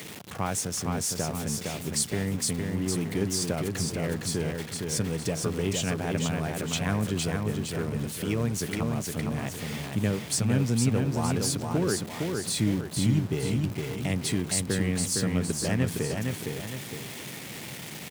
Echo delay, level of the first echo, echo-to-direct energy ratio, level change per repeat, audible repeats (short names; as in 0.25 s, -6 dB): 0.461 s, -4.0 dB, -3.0 dB, -7.0 dB, 2